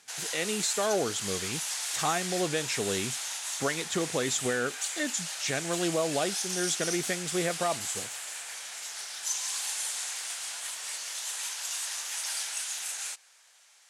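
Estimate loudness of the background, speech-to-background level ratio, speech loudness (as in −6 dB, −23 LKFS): −33.0 LKFS, 1.5 dB, −31.5 LKFS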